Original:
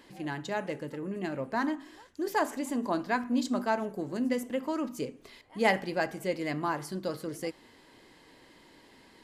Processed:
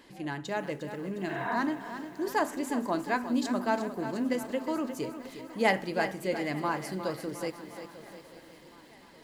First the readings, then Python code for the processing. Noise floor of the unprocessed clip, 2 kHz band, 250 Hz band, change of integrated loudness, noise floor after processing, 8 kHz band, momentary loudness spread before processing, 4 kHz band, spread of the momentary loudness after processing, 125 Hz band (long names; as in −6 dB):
−58 dBFS, +1.0 dB, +0.5 dB, +0.5 dB, −54 dBFS, +0.5 dB, 10 LU, +0.5 dB, 14 LU, +0.5 dB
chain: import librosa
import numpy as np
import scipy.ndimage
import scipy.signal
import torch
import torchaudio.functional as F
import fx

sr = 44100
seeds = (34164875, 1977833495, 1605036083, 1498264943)

y = fx.echo_swing(x, sr, ms=1189, ratio=3, feedback_pct=46, wet_db=-21.0)
y = fx.spec_repair(y, sr, seeds[0], start_s=1.32, length_s=0.21, low_hz=240.0, high_hz=4000.0, source='both')
y = fx.echo_crushed(y, sr, ms=356, feedback_pct=55, bits=9, wet_db=-10.5)